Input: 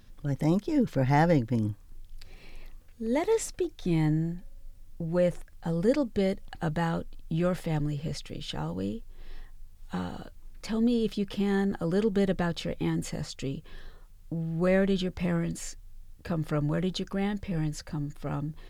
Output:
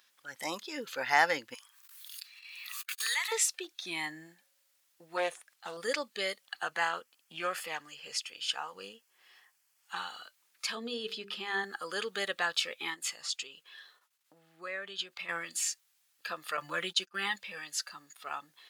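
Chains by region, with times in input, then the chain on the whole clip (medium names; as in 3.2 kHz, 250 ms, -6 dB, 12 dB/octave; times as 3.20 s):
1.54–3.32 s: gate -50 dBFS, range -57 dB + high-pass 1.1 kHz 24 dB/octave + swell ahead of each attack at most 28 dB/s
5.17–5.77 s: upward compressor, threshold -45 dBFS + loudspeaker Doppler distortion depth 0.24 ms
6.63–9.96 s: peaking EQ 3.8 kHz -9.5 dB 0.23 oct + loudspeaker Doppler distortion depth 0.11 ms
10.75–11.64 s: tilt EQ -2 dB/octave + hum notches 50/100/150/200/250/300/350/400/450/500 Hz
12.94–15.29 s: treble shelf 5.1 kHz -3 dB + compression 3:1, threshold -33 dBFS + expander -47 dBFS
16.57–17.36 s: gate -34 dBFS, range -24 dB + comb 5.8 ms, depth 83%
whole clip: spectral noise reduction 8 dB; high-pass 1.3 kHz 12 dB/octave; trim +8 dB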